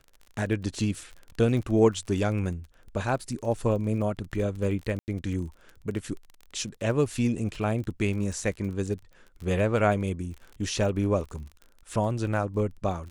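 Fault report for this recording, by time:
crackle 32/s -36 dBFS
4.99–5.08 gap 89 ms

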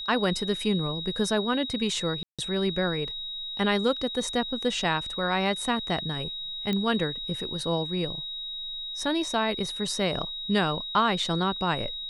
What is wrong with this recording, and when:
tone 3800 Hz -33 dBFS
2.23–2.39 gap 0.156 s
6.73 pop -16 dBFS

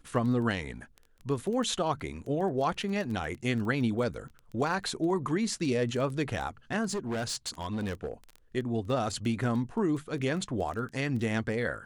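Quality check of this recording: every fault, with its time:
crackle 12/s -35 dBFS
6.85–8.12 clipped -29 dBFS

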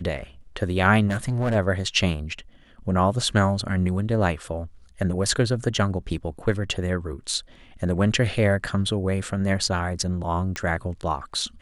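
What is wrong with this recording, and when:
1.07–1.56 clipped -19.5 dBFS
10.56 pop -14 dBFS

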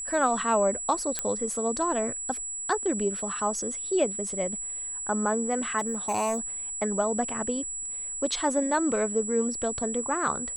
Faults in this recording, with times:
tone 7800 Hz -32 dBFS
1.19 pop -11 dBFS
5.78–6.39 clipped -23 dBFS

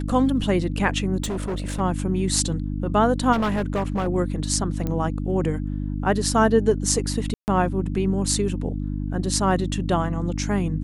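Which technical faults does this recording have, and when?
hum 50 Hz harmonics 6 -27 dBFS
1.22–1.81 clipped -23.5 dBFS
3.32–4.08 clipped -19.5 dBFS
4.87 pop -15 dBFS
7.34–7.48 gap 0.139 s

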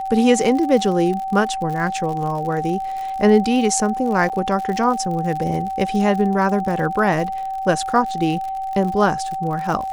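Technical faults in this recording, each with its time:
crackle 68/s -27 dBFS
tone 770 Hz -23 dBFS
4.29–4.3 gap 7.4 ms

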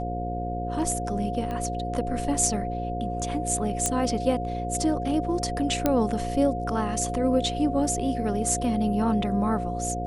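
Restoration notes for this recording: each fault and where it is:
buzz 60 Hz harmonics 9 -32 dBFS
tone 710 Hz -31 dBFS
1.51 pop -21 dBFS
3.86 pop -9 dBFS
5.86 pop -8 dBFS

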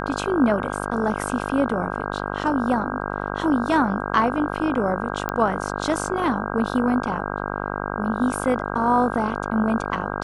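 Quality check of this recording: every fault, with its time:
buzz 50 Hz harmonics 32 -28 dBFS
5.29 pop -12 dBFS

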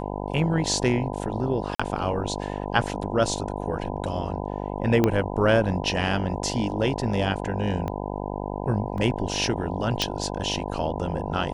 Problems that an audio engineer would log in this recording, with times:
buzz 50 Hz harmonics 20 -31 dBFS
1.75–1.79 gap 45 ms
5.04 pop -8 dBFS
7.88 pop -18 dBFS
8.98 gap 2.1 ms
10.02 pop -8 dBFS

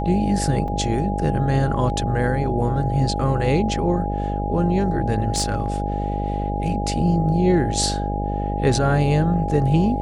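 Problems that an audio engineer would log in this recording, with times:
buzz 50 Hz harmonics 14 -25 dBFS
tone 820 Hz -27 dBFS
0.68 gap 4 ms
5.34–5.78 clipped -15 dBFS

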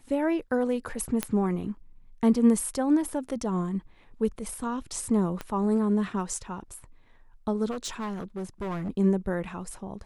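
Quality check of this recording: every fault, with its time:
1.23 pop -11 dBFS
5.41 pop -19 dBFS
7.7–8.89 clipped -29 dBFS

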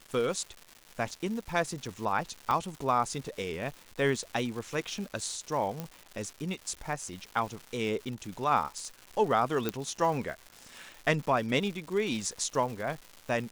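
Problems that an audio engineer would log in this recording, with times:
crackle 360/s -38 dBFS
2.51 pop -17 dBFS
5.8 pop -20 dBFS
9.69 pop -14 dBFS

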